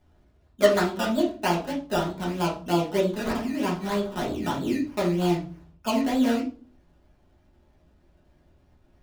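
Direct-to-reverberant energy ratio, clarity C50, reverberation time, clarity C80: -5.5 dB, 7.5 dB, 0.40 s, 14.0 dB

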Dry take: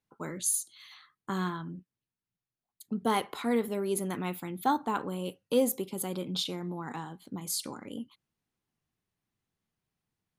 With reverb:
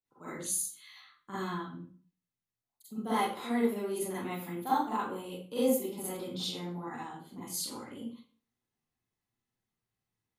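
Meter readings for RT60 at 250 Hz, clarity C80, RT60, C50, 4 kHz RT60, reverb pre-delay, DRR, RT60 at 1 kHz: 0.45 s, 5.5 dB, 0.45 s, -1.0 dB, 0.35 s, 36 ms, -11.0 dB, 0.45 s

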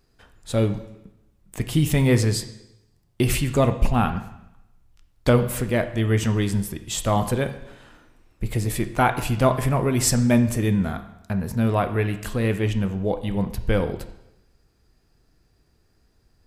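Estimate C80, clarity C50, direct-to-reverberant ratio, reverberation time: 14.0 dB, 11.5 dB, 8.5 dB, 0.90 s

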